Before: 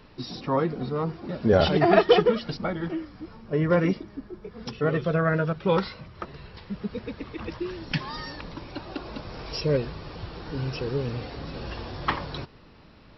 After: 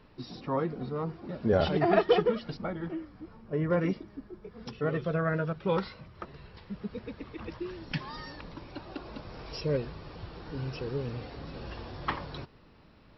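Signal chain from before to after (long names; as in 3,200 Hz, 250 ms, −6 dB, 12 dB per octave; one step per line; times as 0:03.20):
high-shelf EQ 3,800 Hz −7 dB, from 0:02.62 −12 dB, from 0:03.81 −4 dB
level −5.5 dB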